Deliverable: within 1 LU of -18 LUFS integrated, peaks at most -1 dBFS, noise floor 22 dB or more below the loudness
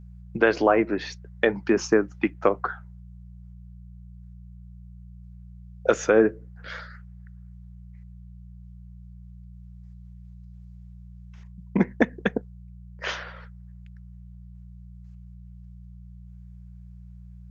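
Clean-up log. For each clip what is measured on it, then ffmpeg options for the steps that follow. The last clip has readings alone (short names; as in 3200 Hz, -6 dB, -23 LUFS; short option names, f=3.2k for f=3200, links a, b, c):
hum 60 Hz; harmonics up to 180 Hz; hum level -41 dBFS; loudness -25.0 LUFS; peak -4.0 dBFS; loudness target -18.0 LUFS
-> -af "bandreject=f=60:t=h:w=4,bandreject=f=120:t=h:w=4,bandreject=f=180:t=h:w=4"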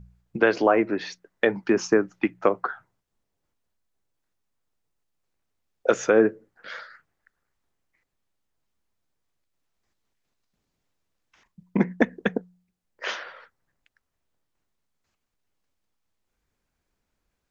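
hum none; loudness -24.5 LUFS; peak -4.0 dBFS; loudness target -18.0 LUFS
-> -af "volume=6.5dB,alimiter=limit=-1dB:level=0:latency=1"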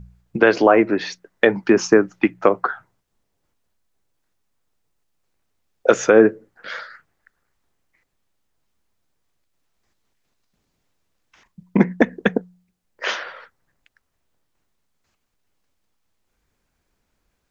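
loudness -18.5 LUFS; peak -1.0 dBFS; noise floor -73 dBFS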